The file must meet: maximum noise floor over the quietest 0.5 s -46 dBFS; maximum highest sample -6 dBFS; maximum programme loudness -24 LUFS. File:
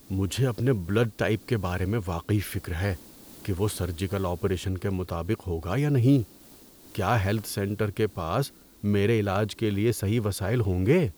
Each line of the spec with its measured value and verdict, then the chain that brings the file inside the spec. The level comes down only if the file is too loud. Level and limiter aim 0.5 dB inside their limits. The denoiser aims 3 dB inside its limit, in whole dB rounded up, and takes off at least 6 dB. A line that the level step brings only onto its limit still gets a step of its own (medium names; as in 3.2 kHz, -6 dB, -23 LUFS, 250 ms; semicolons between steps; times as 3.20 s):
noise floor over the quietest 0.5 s -51 dBFS: pass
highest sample -10.0 dBFS: pass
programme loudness -27.0 LUFS: pass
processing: none needed